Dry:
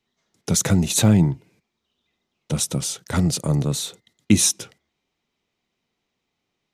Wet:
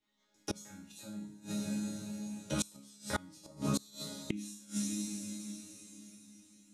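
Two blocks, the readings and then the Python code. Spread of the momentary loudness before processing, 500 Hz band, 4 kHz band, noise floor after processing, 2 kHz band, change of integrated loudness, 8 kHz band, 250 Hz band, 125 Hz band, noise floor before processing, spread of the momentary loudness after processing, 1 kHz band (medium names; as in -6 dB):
15 LU, -15.0 dB, -16.5 dB, -72 dBFS, -12.5 dB, -19.0 dB, -18.5 dB, -15.0 dB, -22.0 dB, -79 dBFS, 16 LU, -11.5 dB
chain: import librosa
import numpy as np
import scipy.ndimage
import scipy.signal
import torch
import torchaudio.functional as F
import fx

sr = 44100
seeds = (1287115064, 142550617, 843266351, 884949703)

y = fx.resonator_bank(x, sr, root=56, chord='sus4', decay_s=0.49)
y = fx.rev_double_slope(y, sr, seeds[0], early_s=0.46, late_s=4.5, knee_db=-19, drr_db=1.0)
y = fx.gate_flip(y, sr, shuts_db=-33.0, range_db=-27)
y = y * 10.0 ** (13.5 / 20.0)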